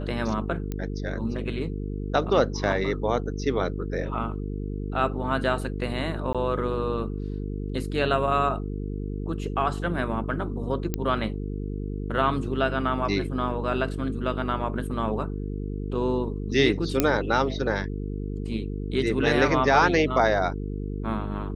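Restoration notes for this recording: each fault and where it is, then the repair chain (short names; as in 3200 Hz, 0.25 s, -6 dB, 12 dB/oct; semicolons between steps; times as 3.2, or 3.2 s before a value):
buzz 50 Hz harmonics 9 -31 dBFS
0.72 pop -18 dBFS
6.33–6.35 gap 16 ms
10.94 pop -12 dBFS
17 pop -5 dBFS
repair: de-click; de-hum 50 Hz, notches 9; interpolate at 6.33, 16 ms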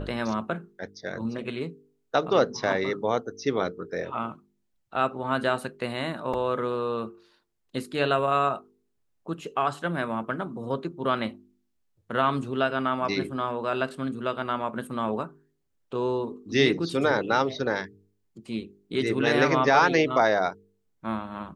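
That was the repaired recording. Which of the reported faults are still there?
none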